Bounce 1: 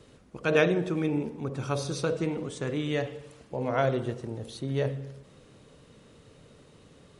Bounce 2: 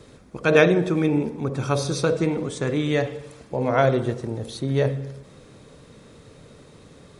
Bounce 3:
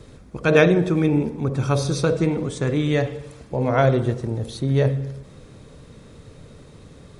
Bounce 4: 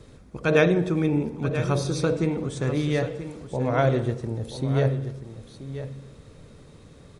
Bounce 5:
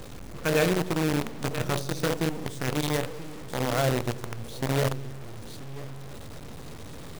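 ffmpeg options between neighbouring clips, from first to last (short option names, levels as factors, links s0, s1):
-af "bandreject=f=2900:w=9.7,volume=2.24"
-af "lowshelf=f=120:g=10.5"
-af "aecho=1:1:983:0.266,volume=0.631"
-af "aeval=exprs='val(0)+0.5*0.0473*sgn(val(0))':c=same,acrusher=bits=4:dc=4:mix=0:aa=0.000001,volume=0.501"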